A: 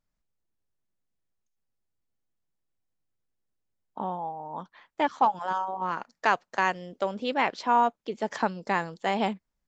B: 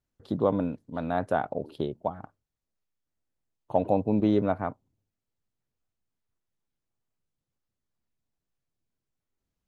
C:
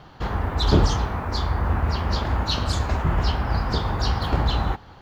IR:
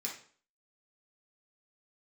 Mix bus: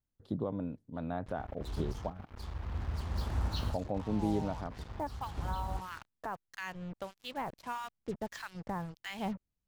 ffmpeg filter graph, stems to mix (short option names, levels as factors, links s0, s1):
-filter_complex "[0:a]asubboost=boost=7.5:cutoff=120,acrossover=split=1400[s0][s1];[s0]aeval=exprs='val(0)*(1-1/2+1/2*cos(2*PI*1.6*n/s))':c=same[s2];[s1]aeval=exprs='val(0)*(1-1/2-1/2*cos(2*PI*1.6*n/s))':c=same[s3];[s2][s3]amix=inputs=2:normalize=0,equalizer=f=210:t=o:w=0.62:g=-5,volume=0.668[s4];[1:a]alimiter=limit=0.168:level=0:latency=1:release=366,volume=0.316,asplit=2[s5][s6];[2:a]adelay=1050,volume=0.251[s7];[s6]apad=whole_len=267338[s8];[s7][s8]sidechaincompress=threshold=0.00316:ratio=5:attack=10:release=1390[s9];[s4][s9]amix=inputs=2:normalize=0,acrusher=bits=7:mix=0:aa=0.5,alimiter=level_in=1.68:limit=0.0631:level=0:latency=1:release=362,volume=0.596,volume=1[s10];[s5][s10]amix=inputs=2:normalize=0,lowshelf=f=230:g=8.5"